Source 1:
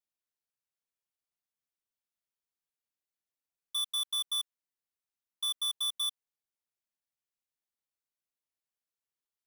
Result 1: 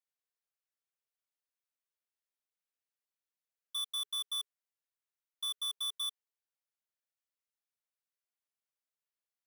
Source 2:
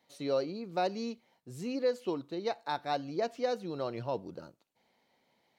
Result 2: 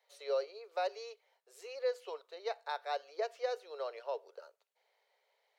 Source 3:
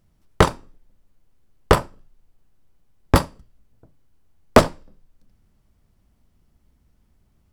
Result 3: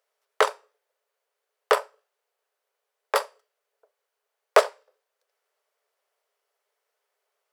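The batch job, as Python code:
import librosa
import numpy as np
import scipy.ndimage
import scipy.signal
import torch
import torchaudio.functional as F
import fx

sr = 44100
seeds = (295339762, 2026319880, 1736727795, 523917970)

y = scipy.signal.sosfilt(scipy.signal.cheby1(6, 3, 410.0, 'highpass', fs=sr, output='sos'), x)
y = y * 10.0 ** (-2.0 / 20.0)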